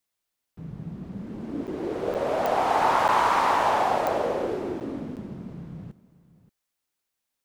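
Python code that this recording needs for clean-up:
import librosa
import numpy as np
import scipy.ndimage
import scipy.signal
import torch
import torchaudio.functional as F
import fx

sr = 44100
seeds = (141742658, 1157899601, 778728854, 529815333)

y = fx.fix_declick_ar(x, sr, threshold=10.0)
y = fx.fix_interpolate(y, sr, at_s=(1.67, 2.14, 3.08, 4.8, 5.16), length_ms=8.0)
y = fx.fix_echo_inverse(y, sr, delay_ms=579, level_db=-18.5)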